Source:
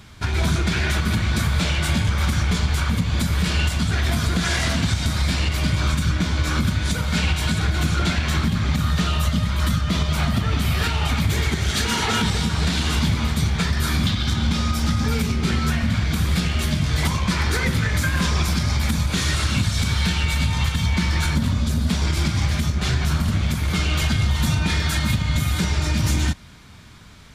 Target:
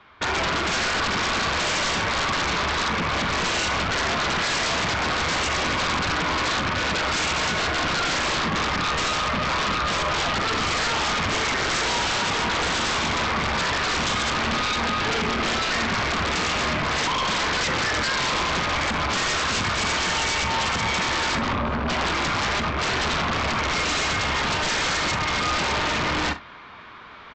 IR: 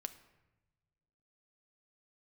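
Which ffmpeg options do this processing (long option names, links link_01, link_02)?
-filter_complex "[0:a]lowpass=4800,acrossover=split=340 3300:gain=0.1 1 0.112[link_01][link_02][link_03];[link_01][link_02][link_03]amix=inputs=3:normalize=0,afwtdn=0.0141,equalizer=frequency=1100:width=2.9:gain=6,areverse,acompressor=mode=upward:threshold=-48dB:ratio=2.5,areverse,alimiter=limit=-21.5dB:level=0:latency=1:release=129,aresample=16000,aeval=exprs='0.0891*sin(PI/2*3.55*val(0)/0.0891)':channel_layout=same,aresample=44100,aecho=1:1:43|65:0.237|0.112"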